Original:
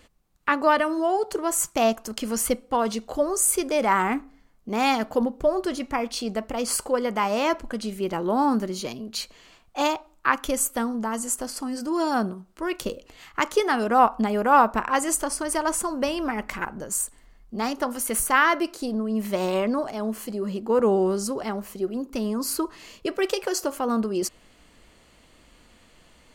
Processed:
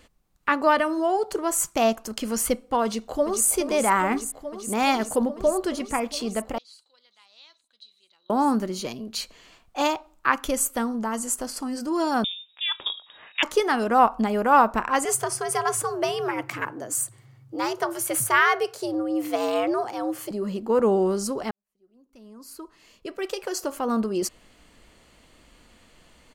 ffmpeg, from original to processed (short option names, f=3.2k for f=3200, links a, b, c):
-filter_complex "[0:a]asplit=2[a][b];[b]afade=t=in:st=2.84:d=0.01,afade=t=out:st=3.47:d=0.01,aecho=0:1:420|840|1260|1680|2100|2520|2940|3360|3780|4200|4620|5040:0.354813|0.301591|0.256353|0.2179|0.185215|0.157433|0.133818|0.113745|0.0966833|0.0821808|0.0698537|0.0593756[c];[a][c]amix=inputs=2:normalize=0,asettb=1/sr,asplit=3[d][e][f];[d]atrim=end=6.584[g];[e]atrim=start=6.58:end=8.3,asetpts=PTS-STARTPTS,afade=t=in:d=0.004:c=qsin,afade=t=out:st=1.716:d=0.004:c=qsin,bandpass=f=3.9k:t=q:w=20[h];[f]atrim=start=8.296[i];[g][h]acrossfade=d=0.004:c1=hsin:c2=qsin[j];[j][i]acrossfade=d=0.004:c1=qsin:c2=hsin,asettb=1/sr,asplit=3[k][l][m];[k]atrim=end=12.244[n];[l]atrim=start=12.24:end=13.43,asetpts=PTS-STARTPTS,afade=t=in:d=0.004:c=qsin,afade=t=out:st=1.186:d=0.004:c=qsin,lowpass=f=3.2k:t=q:w=0.5098,lowpass=f=3.2k:t=q:w=0.6013,lowpass=f=3.2k:t=q:w=0.9,lowpass=f=3.2k:t=q:w=2.563,afreqshift=-3800[o];[m]atrim=start=13.426[p];[n][o]acrossfade=d=0.004:c1=hsin:c2=qsin[q];[q][p]acrossfade=d=0.004:c1=qsin:c2=hsin,asettb=1/sr,asplit=3[r][s][t];[r]atrim=end=15.054[u];[s]atrim=start=15.05:end=20.31,asetpts=PTS-STARTPTS,afade=t=in:d=0.004:c=qsin,afade=t=out:st=5.256:d=0.004:c=qsin,afreqshift=97[v];[t]atrim=start=20.306[w];[u][v]acrossfade=d=0.004:c1=hsin:c2=qsin[x];[x][w]acrossfade=d=0.004:c1=qsin:c2=hsin,asplit=2[y][z];[y]atrim=end=21.51,asetpts=PTS-STARTPTS,afade=t=out:st=21.506:d=0.004:c=hsin[aa];[z]atrim=start=21.51,asetpts=PTS-STARTPTS,afade=t=in:d=2.45:c=qua[ab];[aa][ab]concat=n=2:v=0:a=1"